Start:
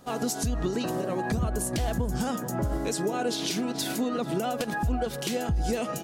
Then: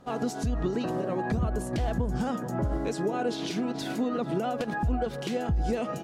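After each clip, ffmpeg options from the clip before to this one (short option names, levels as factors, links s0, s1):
-af "aemphasis=mode=reproduction:type=75kf"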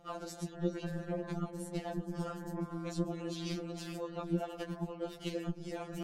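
-af "areverse,acompressor=mode=upward:threshold=0.0398:ratio=2.5,areverse,tremolo=f=160:d=0.857,afftfilt=real='re*2.83*eq(mod(b,8),0)':imag='im*2.83*eq(mod(b,8),0)':win_size=2048:overlap=0.75,volume=0.841"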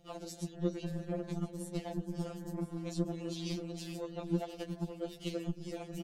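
-filter_complex "[0:a]acrossover=split=1800[s0][s1];[s0]adynamicsmooth=sensitivity=1.5:basefreq=550[s2];[s1]aecho=1:1:1022:0.15[s3];[s2][s3]amix=inputs=2:normalize=0,volume=1.12"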